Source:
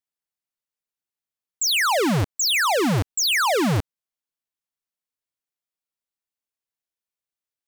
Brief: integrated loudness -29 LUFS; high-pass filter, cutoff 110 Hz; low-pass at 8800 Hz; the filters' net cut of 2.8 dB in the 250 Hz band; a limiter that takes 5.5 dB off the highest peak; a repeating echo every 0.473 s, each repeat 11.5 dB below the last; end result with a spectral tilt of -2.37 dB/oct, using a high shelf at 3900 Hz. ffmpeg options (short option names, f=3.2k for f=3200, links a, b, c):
-af "highpass=110,lowpass=8.8k,equalizer=f=250:t=o:g=-3.5,highshelf=f=3.9k:g=-4.5,alimiter=limit=-19dB:level=0:latency=1,aecho=1:1:473|946|1419:0.266|0.0718|0.0194,volume=-6dB"